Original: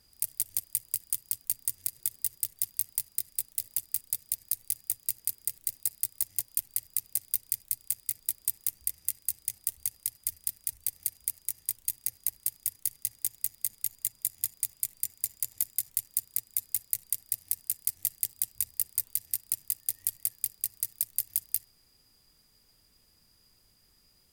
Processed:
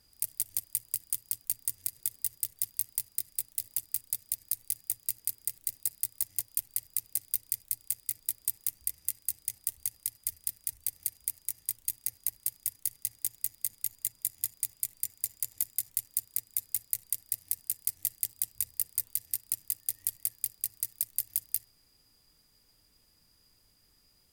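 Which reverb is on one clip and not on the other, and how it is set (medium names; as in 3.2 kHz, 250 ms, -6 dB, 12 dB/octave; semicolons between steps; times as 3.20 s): FDN reverb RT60 0.3 s, high-frequency decay 0.25×, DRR 15.5 dB; trim -1.5 dB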